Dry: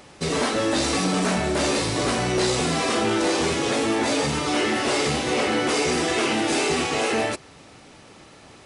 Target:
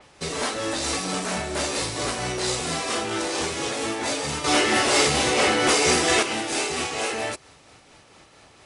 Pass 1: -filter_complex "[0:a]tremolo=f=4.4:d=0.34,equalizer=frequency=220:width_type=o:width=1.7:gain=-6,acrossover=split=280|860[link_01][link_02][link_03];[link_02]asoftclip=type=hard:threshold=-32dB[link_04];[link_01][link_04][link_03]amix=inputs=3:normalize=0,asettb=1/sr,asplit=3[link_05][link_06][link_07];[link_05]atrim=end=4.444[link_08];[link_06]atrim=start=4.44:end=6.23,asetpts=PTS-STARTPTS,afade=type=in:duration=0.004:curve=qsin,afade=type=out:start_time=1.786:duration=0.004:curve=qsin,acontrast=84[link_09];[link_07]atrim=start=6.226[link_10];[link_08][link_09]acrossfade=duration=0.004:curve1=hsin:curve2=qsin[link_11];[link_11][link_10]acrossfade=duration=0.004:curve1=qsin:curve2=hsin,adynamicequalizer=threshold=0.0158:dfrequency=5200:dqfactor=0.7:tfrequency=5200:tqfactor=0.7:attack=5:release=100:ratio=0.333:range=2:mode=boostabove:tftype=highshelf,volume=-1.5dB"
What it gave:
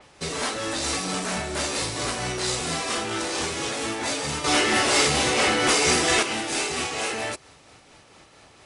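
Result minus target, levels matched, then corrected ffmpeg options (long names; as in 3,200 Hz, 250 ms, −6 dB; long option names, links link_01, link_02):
hard clipping: distortion +12 dB
-filter_complex "[0:a]tremolo=f=4.4:d=0.34,equalizer=frequency=220:width_type=o:width=1.7:gain=-6,acrossover=split=280|860[link_01][link_02][link_03];[link_02]asoftclip=type=hard:threshold=-25.5dB[link_04];[link_01][link_04][link_03]amix=inputs=3:normalize=0,asettb=1/sr,asplit=3[link_05][link_06][link_07];[link_05]atrim=end=4.444[link_08];[link_06]atrim=start=4.44:end=6.23,asetpts=PTS-STARTPTS,afade=type=in:duration=0.004:curve=qsin,afade=type=out:start_time=1.786:duration=0.004:curve=qsin,acontrast=84[link_09];[link_07]atrim=start=6.226[link_10];[link_08][link_09]acrossfade=duration=0.004:curve1=hsin:curve2=qsin[link_11];[link_11][link_10]acrossfade=duration=0.004:curve1=qsin:curve2=hsin,adynamicequalizer=threshold=0.0158:dfrequency=5200:dqfactor=0.7:tfrequency=5200:tqfactor=0.7:attack=5:release=100:ratio=0.333:range=2:mode=boostabove:tftype=highshelf,volume=-1.5dB"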